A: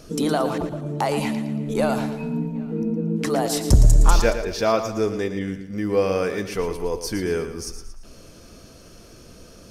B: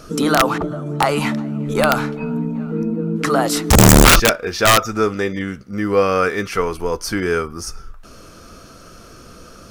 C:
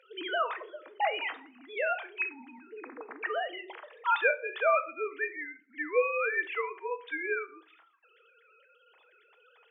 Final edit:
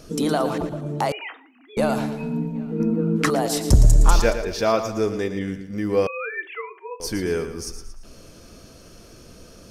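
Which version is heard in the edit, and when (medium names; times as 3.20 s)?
A
1.12–1.77 s: from C
2.80–3.30 s: from B
6.07–7.00 s: from C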